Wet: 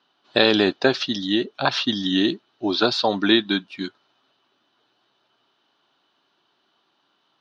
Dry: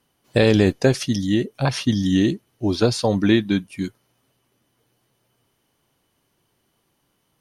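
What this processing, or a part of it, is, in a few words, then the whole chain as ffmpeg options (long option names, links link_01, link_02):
phone earpiece: -filter_complex "[0:a]asettb=1/sr,asplit=3[link_01][link_02][link_03];[link_01]atrim=end=0.764[link_04];[link_02]atrim=start=0.76:end=1.22,asetpts=PTS-STARTPTS,afade=type=in:duration=0.004:curve=qsin,afade=type=out:start_time=0.456:duration=0.004:curve=qsin,lowpass=6600[link_05];[link_03]atrim=start=1.216[link_06];[link_04][link_05]acrossfade=duration=0.004:curve1=hsin:curve2=qsin[link_07];[link_07][link_06]acrossfade=duration=0.004:curve1=qsin:curve2=hsin,highpass=390,equalizer=frequency=490:width_type=q:width=4:gain=-10,equalizer=frequency=1400:width_type=q:width=4:gain=4,equalizer=frequency=2100:width_type=q:width=4:gain=-8,equalizer=frequency=3800:width_type=q:width=4:gain=7,lowpass=frequency=4400:width=0.5412,lowpass=frequency=4400:width=1.3066,volume=5dB"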